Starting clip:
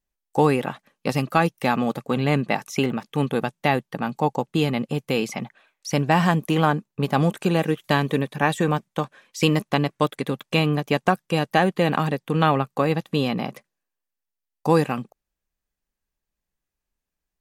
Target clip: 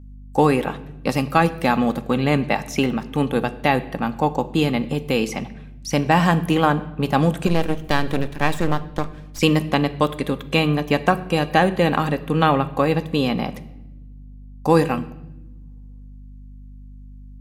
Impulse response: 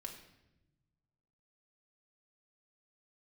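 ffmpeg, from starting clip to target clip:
-filter_complex "[0:a]asettb=1/sr,asplit=3[link_01][link_02][link_03];[link_01]atrim=end=7.474[link_04];[link_02]atrim=start=7.47:end=9.39,asetpts=PTS-STARTPTS,afade=type=in:duration=0.004:curve=qsin,afade=type=out:start_time=1.916:duration=0.004:curve=qsin,aeval=exprs='max(val(0),0)':channel_layout=same[link_05];[link_03]atrim=start=9.386[link_06];[link_04][link_05]acrossfade=duration=0.004:curve1=hsin:curve2=qsin[link_07];[link_07][link_06]acrossfade=duration=0.004:curve1=qsin:curve2=hsin,aeval=exprs='val(0)+0.00794*(sin(2*PI*50*n/s)+sin(2*PI*2*50*n/s)/2+sin(2*PI*3*50*n/s)/3+sin(2*PI*4*50*n/s)/4+sin(2*PI*5*50*n/s)/5)':channel_layout=same,asplit=2[link_08][link_09];[1:a]atrim=start_sample=2205[link_10];[link_09][link_10]afir=irnorm=-1:irlink=0,volume=-1.5dB[link_11];[link_08][link_11]amix=inputs=2:normalize=0,volume=-1dB"

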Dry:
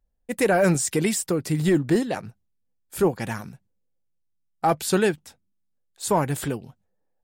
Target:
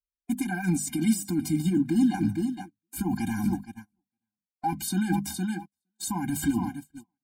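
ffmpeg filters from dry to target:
ffmpeg -i in.wav -af "dynaudnorm=framelen=490:gausssize=5:maxgain=8.5dB,highpass=frequency=96:poles=1,highshelf=frequency=9700:gain=5.5,bandreject=frequency=50:width_type=h:width=6,bandreject=frequency=100:width_type=h:width=6,bandreject=frequency=150:width_type=h:width=6,bandreject=frequency=200:width_type=h:width=6,bandreject=frequency=250:width_type=h:width=6,aecho=1:1:463|926:0.0841|0.0151,agate=range=-36dB:threshold=-41dB:ratio=16:detection=peak,areverse,acompressor=threshold=-26dB:ratio=6,areverse,alimiter=limit=-24dB:level=0:latency=1:release=36,bass=frequency=250:gain=11,treble=frequency=4000:gain=1,aecho=1:1:3.8:0.86,afftfilt=real='re*eq(mod(floor(b*sr/1024/350),2),0)':imag='im*eq(mod(floor(b*sr/1024/350),2),0)':win_size=1024:overlap=0.75,volume=1.5dB" out.wav

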